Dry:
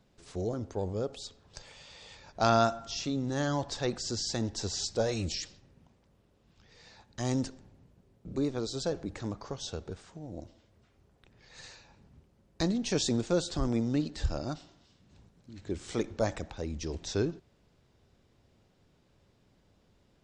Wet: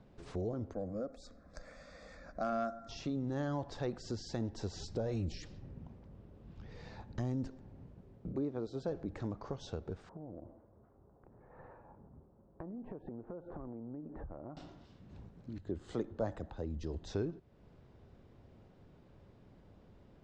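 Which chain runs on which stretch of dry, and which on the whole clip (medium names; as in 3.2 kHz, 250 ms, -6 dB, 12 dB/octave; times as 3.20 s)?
0.73–2.89 s: static phaser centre 600 Hz, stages 8 + hard clipper -19 dBFS
4.75–7.47 s: bass shelf 330 Hz +7 dB + compression 2.5:1, threshold -28 dBFS
8.31–8.88 s: high-pass 120 Hz 6 dB/octave + treble shelf 2.5 kHz -9 dB
10.09–14.57 s: low-pass 1.2 kHz 24 dB/octave + bass shelf 230 Hz -8.5 dB + compression, threshold -47 dBFS
15.58–17.10 s: peaking EQ 2.3 kHz -12 dB 0.2 oct + band-stop 5.6 kHz, Q 7.5 + three bands expanded up and down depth 40%
whole clip: treble shelf 7.6 kHz -11.5 dB; compression 2:1, threshold -50 dBFS; treble shelf 2.1 kHz -12 dB; trim +7 dB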